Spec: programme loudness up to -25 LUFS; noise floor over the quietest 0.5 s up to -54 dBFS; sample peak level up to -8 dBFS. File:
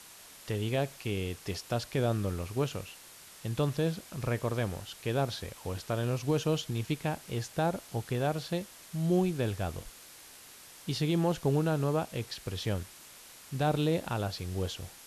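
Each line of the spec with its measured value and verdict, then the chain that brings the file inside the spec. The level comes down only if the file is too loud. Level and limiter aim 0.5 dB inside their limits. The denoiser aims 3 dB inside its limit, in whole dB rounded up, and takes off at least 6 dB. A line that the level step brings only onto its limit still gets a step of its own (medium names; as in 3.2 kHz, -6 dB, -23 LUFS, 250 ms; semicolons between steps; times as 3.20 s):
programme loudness -32.5 LUFS: pass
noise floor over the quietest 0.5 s -52 dBFS: fail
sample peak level -17.5 dBFS: pass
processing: noise reduction 6 dB, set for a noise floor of -52 dBFS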